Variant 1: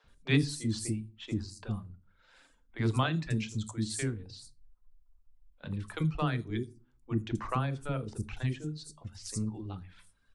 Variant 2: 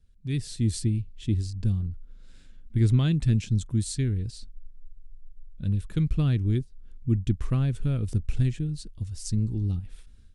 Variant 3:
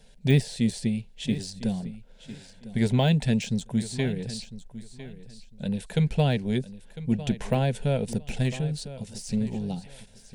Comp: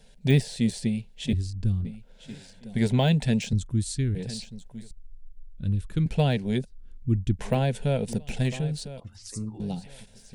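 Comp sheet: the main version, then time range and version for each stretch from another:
3
1.33–1.85 s: from 2
3.53–4.15 s: from 2
4.91–6.06 s: from 2
6.65–7.39 s: from 2
9.00–9.60 s: from 1

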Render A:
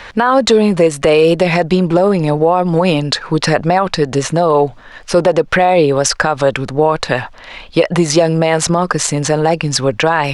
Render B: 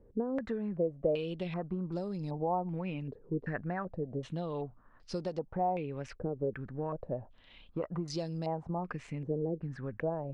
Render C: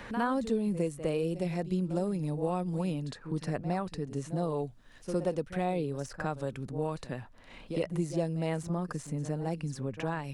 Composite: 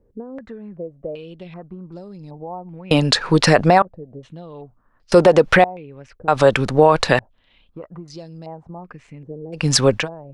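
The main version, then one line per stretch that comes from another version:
B
2.91–3.82 s: from A
5.12–5.64 s: from A
6.28–7.19 s: from A
9.60–10.01 s: from A, crossfade 0.16 s
not used: C

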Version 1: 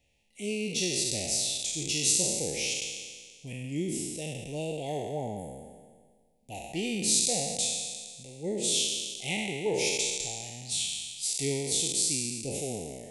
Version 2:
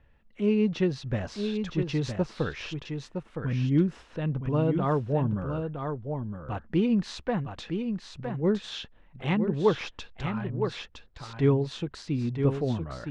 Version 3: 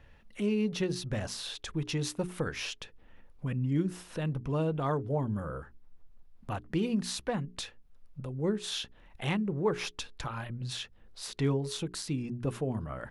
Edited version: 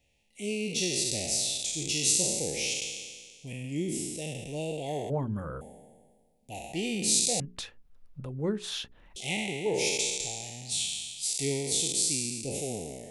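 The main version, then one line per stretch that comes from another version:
1
5.10–5.61 s: from 3
7.40–9.16 s: from 3
not used: 2

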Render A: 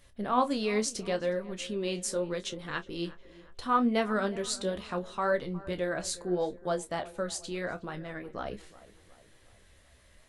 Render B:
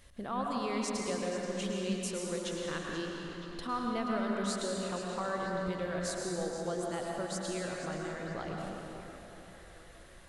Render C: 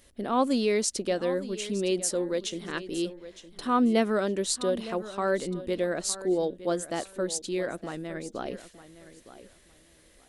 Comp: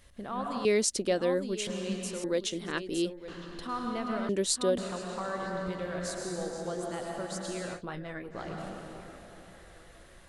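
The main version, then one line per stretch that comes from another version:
B
0.65–1.67 s: from C
2.24–3.28 s: from C
4.29–4.78 s: from C
7.77–8.35 s: from A, crossfade 0.10 s

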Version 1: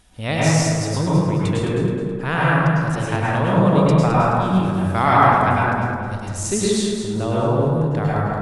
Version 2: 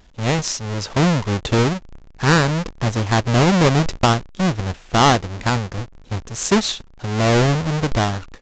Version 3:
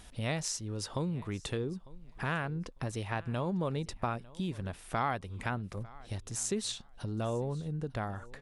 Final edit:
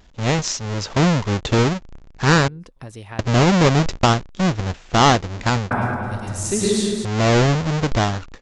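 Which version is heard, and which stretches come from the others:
2
2.48–3.19 s: from 3
5.71–7.05 s: from 1

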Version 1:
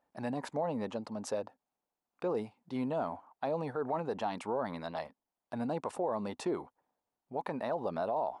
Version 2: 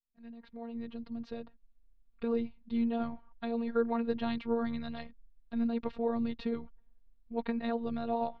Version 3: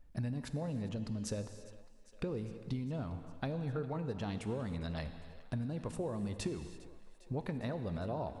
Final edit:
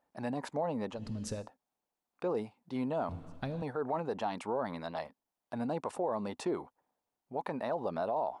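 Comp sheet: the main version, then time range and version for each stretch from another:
1
0.98–1.42 s: from 3, crossfade 0.16 s
3.09–3.62 s: from 3
not used: 2

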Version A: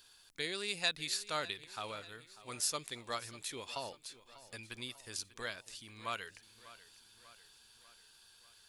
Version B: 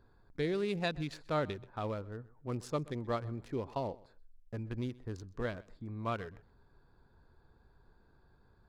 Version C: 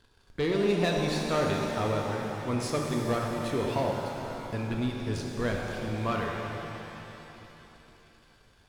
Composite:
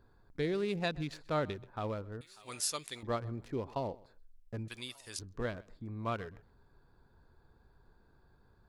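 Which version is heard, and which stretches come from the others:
B
2.21–3.03 s: from A
4.68–5.19 s: from A
not used: C

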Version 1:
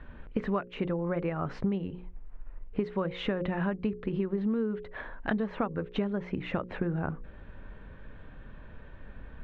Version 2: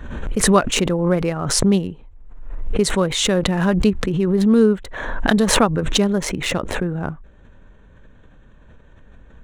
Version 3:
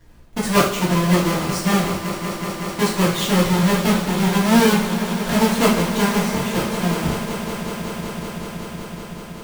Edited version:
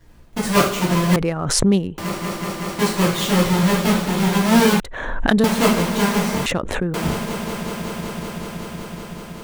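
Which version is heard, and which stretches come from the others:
3
1.16–1.98 s: from 2
4.80–5.44 s: from 2
6.46–6.94 s: from 2
not used: 1

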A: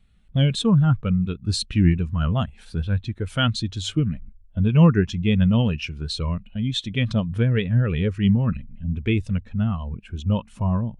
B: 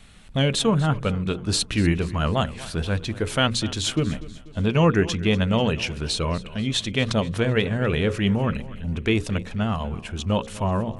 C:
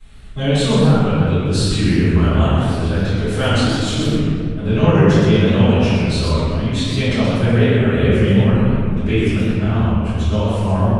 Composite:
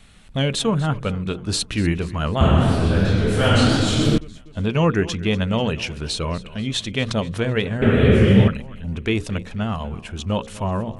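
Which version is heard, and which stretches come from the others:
B
2.41–4.18 s: from C
7.82–8.48 s: from C
not used: A

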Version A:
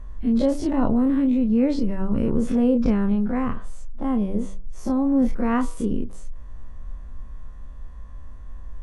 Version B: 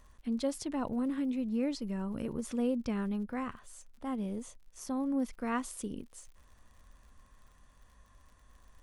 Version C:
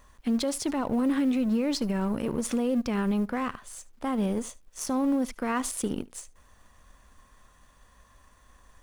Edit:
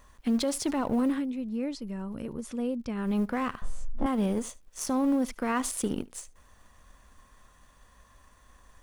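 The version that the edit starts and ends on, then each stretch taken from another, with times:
C
1.15–3.07 s: from B, crossfade 0.24 s
3.62–4.06 s: from A

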